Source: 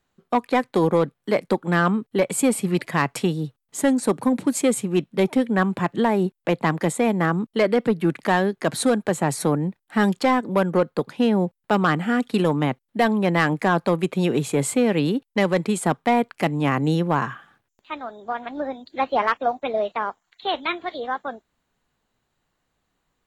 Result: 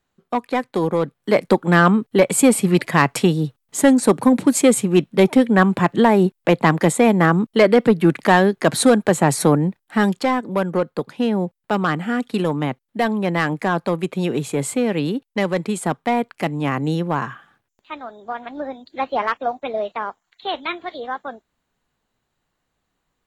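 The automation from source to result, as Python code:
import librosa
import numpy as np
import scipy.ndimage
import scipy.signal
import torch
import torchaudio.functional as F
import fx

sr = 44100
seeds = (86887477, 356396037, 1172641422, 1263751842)

y = fx.gain(x, sr, db=fx.line((0.96, -1.0), (1.42, 6.0), (9.53, 6.0), (10.33, -0.5)))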